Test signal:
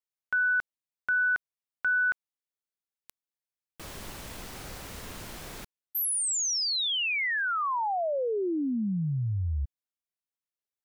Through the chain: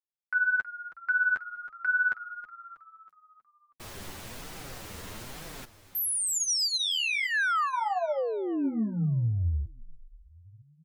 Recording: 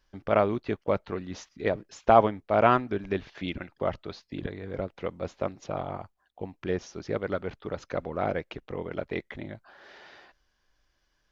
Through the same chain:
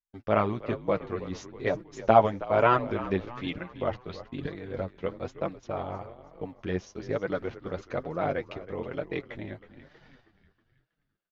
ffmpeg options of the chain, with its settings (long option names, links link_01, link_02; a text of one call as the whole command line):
ffmpeg -i in.wav -filter_complex "[0:a]agate=range=-33dB:threshold=-45dB:ratio=3:release=57:detection=peak,asplit=6[link_01][link_02][link_03][link_04][link_05][link_06];[link_02]adelay=320,afreqshift=-59,volume=-15dB[link_07];[link_03]adelay=640,afreqshift=-118,volume=-21.2dB[link_08];[link_04]adelay=960,afreqshift=-177,volume=-27.4dB[link_09];[link_05]adelay=1280,afreqshift=-236,volume=-33.6dB[link_10];[link_06]adelay=1600,afreqshift=-295,volume=-39.8dB[link_11];[link_01][link_07][link_08][link_09][link_10][link_11]amix=inputs=6:normalize=0,flanger=delay=5.8:depth=5.3:regen=13:speed=1.1:shape=triangular,volume=3dB" out.wav